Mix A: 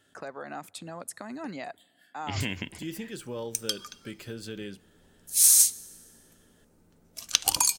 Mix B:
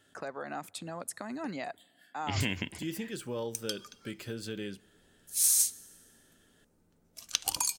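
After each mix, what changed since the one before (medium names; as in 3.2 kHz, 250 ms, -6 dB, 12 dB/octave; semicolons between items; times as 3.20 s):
background -7.0 dB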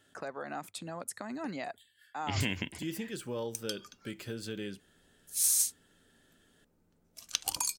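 reverb: off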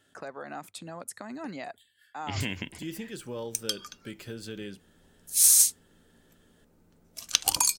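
background +8.5 dB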